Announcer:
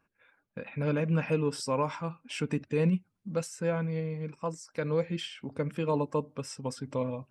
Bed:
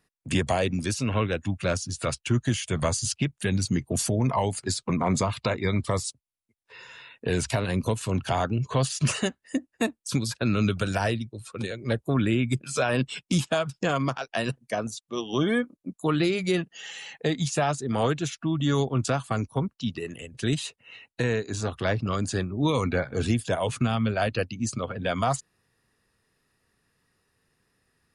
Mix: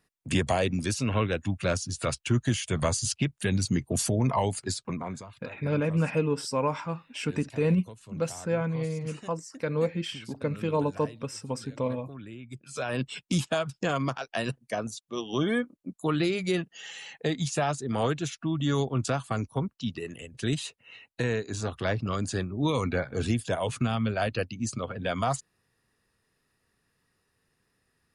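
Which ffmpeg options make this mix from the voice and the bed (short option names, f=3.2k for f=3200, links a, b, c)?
-filter_complex "[0:a]adelay=4850,volume=2dB[a];[1:a]volume=16dB,afade=t=out:st=4.51:d=0.72:silence=0.11885,afade=t=in:st=12.48:d=0.72:silence=0.141254[b];[a][b]amix=inputs=2:normalize=0"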